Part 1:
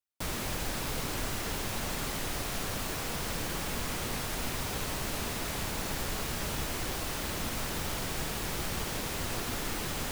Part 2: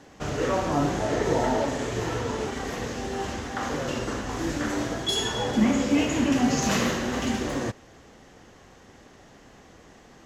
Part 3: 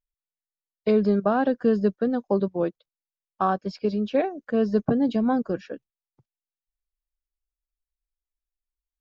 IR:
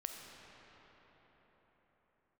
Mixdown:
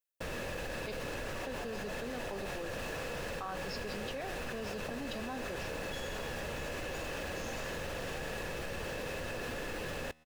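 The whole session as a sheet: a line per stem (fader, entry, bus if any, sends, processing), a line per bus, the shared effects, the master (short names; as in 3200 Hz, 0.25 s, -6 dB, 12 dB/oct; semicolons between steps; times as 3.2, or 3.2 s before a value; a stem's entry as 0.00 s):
+1.0 dB, 0.00 s, no send, LPF 4000 Hz 6 dB/oct; small resonant body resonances 520/1700/2600 Hz, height 12 dB, ringing for 25 ms
-12.5 dB, 0.85 s, no send, HPF 500 Hz 24 dB/oct
-1.0 dB, 0.00 s, muted 0.92–1.45, no send, tilt +4 dB/oct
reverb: off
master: resonator 79 Hz, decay 1 s, harmonics all, mix 50%; level quantiser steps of 13 dB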